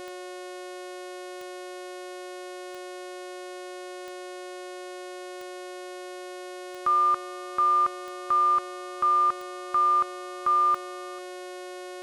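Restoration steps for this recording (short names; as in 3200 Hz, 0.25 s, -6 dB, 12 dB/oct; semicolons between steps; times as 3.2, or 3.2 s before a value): de-click; de-hum 362.9 Hz, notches 32; notch 560 Hz, Q 30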